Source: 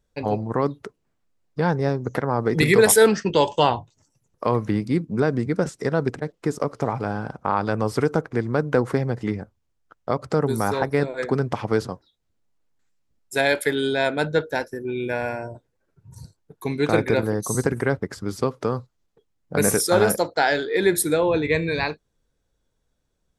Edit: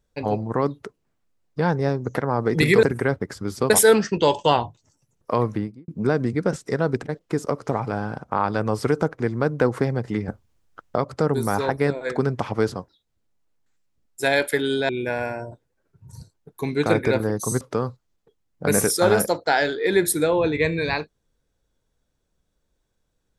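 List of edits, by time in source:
4.56–5.01 studio fade out
9.41–10.09 gain +8 dB
14.02–14.92 cut
17.64–18.51 move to 2.83

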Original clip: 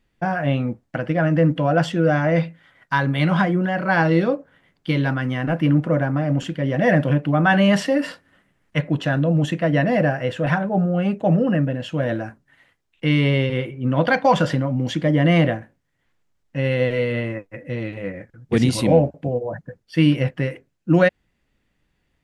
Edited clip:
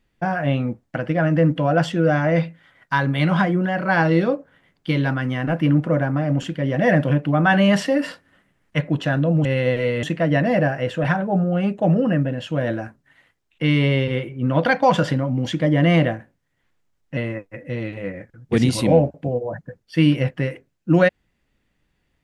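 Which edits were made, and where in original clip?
16.59–17.17 move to 9.45

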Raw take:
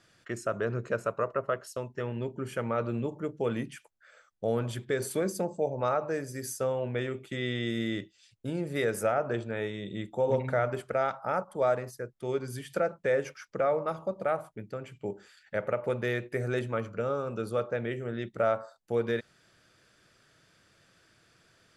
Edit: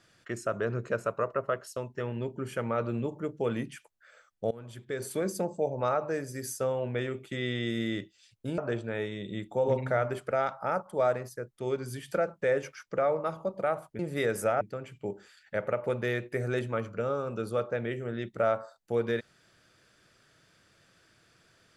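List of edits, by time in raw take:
4.51–5.34 fade in, from -21 dB
8.58–9.2 move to 14.61

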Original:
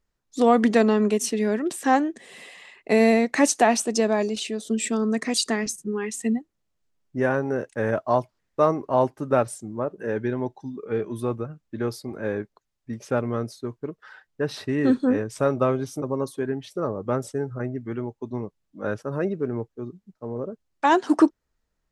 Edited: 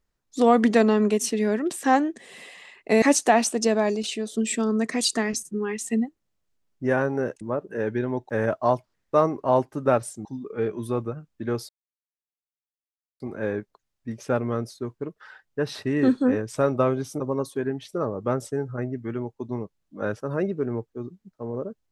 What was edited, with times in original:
3.02–3.35 cut
9.7–10.58 move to 7.74
12.02 insert silence 1.51 s

